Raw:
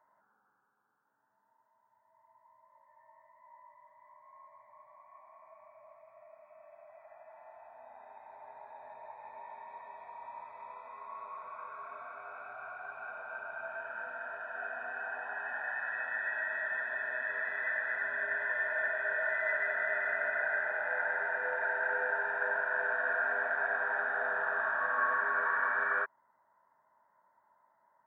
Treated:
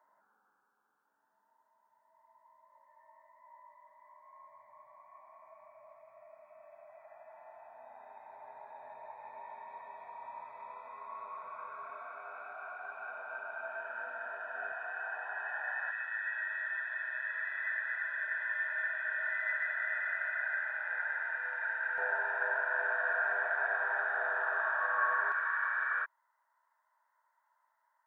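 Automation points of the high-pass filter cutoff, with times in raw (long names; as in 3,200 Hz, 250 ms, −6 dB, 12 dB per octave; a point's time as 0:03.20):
210 Hz
from 0:04.41 91 Hz
from 0:11.90 270 Hz
from 0:14.72 600 Hz
from 0:15.91 1,400 Hz
from 0:21.98 540 Hz
from 0:25.32 1,300 Hz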